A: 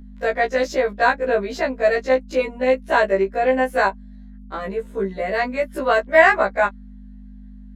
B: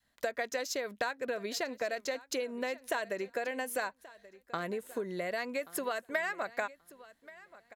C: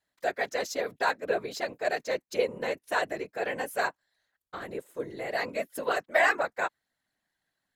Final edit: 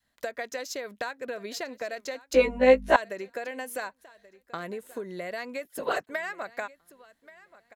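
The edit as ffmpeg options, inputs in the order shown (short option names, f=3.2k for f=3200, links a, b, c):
-filter_complex "[1:a]asplit=3[a][b][c];[a]atrim=end=2.342[d];[0:a]atrim=start=2.338:end=2.962[e];[b]atrim=start=2.958:end=5.652[f];[2:a]atrim=start=5.648:end=6.072[g];[c]atrim=start=6.068[h];[d][e]acrossfade=d=0.004:c1=hsin:c2=hsin[i];[i][f]acrossfade=d=0.004:c1=hsin:c2=hsin[j];[j][g]acrossfade=d=0.004:c1=hsin:c2=hsin[k];[k][h]acrossfade=d=0.004:c1=hsin:c2=hsin"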